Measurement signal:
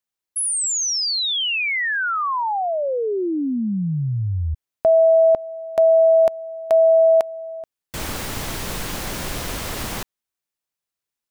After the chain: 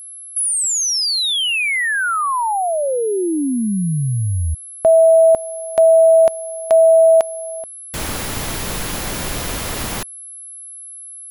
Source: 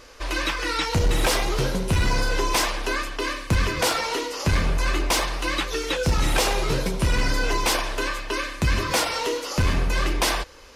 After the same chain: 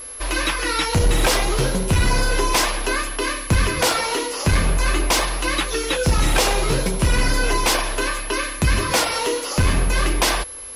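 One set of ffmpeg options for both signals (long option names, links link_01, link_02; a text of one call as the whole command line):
ffmpeg -i in.wav -af "aeval=exprs='val(0)+0.0158*sin(2*PI*11000*n/s)':channel_layout=same,volume=3.5dB" out.wav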